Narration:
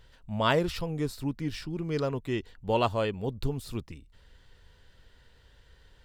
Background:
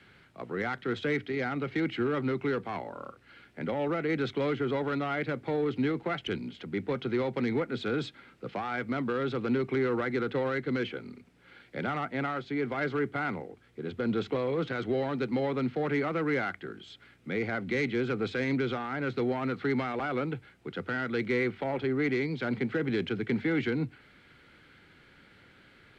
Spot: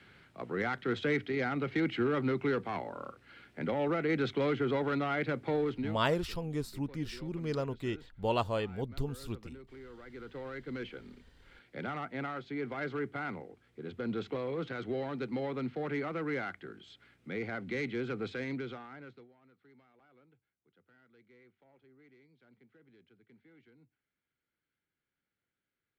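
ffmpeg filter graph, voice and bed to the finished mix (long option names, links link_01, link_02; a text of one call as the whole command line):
ffmpeg -i stem1.wav -i stem2.wav -filter_complex "[0:a]adelay=5550,volume=-4.5dB[link_01];[1:a]volume=15dB,afade=type=out:start_time=5.56:duration=0.46:silence=0.0891251,afade=type=in:start_time=9.98:duration=1.27:silence=0.158489,afade=type=out:start_time=18.26:duration=1.02:silence=0.0421697[link_02];[link_01][link_02]amix=inputs=2:normalize=0" out.wav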